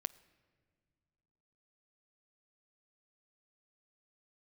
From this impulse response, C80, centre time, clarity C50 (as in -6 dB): 21.0 dB, 2 ms, 20.0 dB